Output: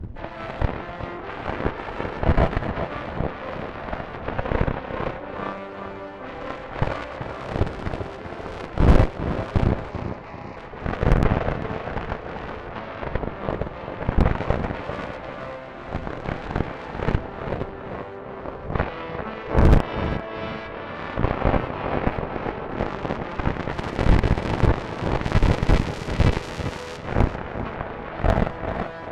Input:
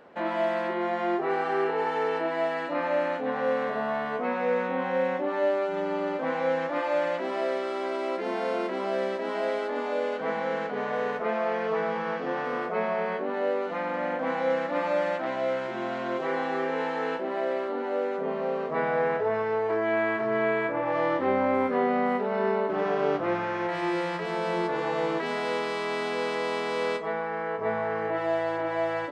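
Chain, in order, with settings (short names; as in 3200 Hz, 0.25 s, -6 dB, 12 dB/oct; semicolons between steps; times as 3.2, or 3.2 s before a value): wind noise 88 Hz -22 dBFS; added harmonics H 3 -17 dB, 4 -10 dB, 7 -16 dB, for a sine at -7 dBFS; 9.91–10.57 fixed phaser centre 2200 Hz, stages 8; on a send: tape echo 0.391 s, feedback 48%, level -6 dB, low-pass 4000 Hz; on the sum: gain -1.5 dB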